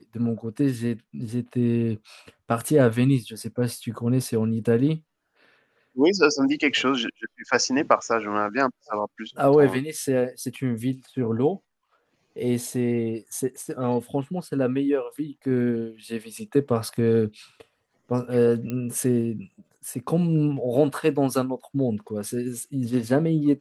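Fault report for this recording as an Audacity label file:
18.700000	18.700000	click −17 dBFS

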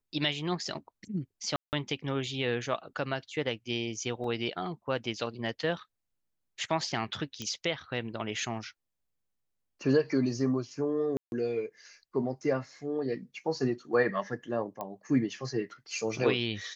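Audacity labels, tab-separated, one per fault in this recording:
1.560000	1.730000	drop-out 169 ms
4.240000	4.240000	drop-out 2.7 ms
7.420000	7.420000	click −23 dBFS
11.170000	11.320000	drop-out 151 ms
14.810000	14.810000	click −23 dBFS

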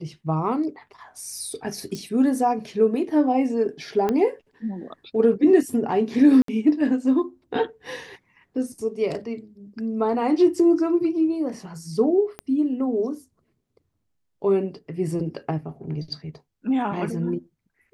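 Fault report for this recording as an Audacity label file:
1.950000	1.950000	click −20 dBFS
4.090000	4.090000	click −12 dBFS
6.420000	6.480000	drop-out 63 ms
12.390000	12.390000	click −18 dBFS

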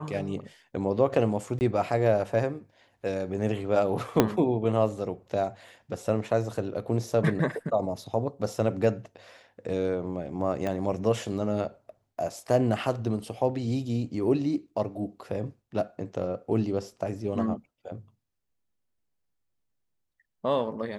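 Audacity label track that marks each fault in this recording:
1.590000	1.610000	drop-out 19 ms
4.200000	4.200000	click −5 dBFS
10.670000	10.670000	click −18 dBFS

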